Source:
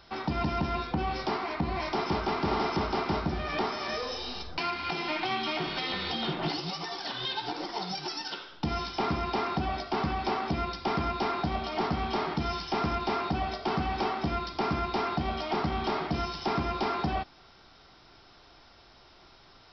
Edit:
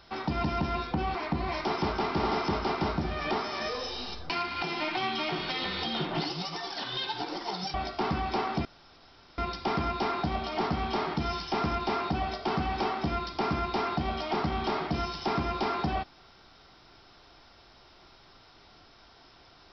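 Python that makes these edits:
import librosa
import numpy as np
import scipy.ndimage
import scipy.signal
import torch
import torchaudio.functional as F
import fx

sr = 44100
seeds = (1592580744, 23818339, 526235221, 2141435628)

y = fx.edit(x, sr, fx.cut(start_s=1.15, length_s=0.28),
    fx.cut(start_s=8.02, length_s=1.65),
    fx.insert_room_tone(at_s=10.58, length_s=0.73), tone=tone)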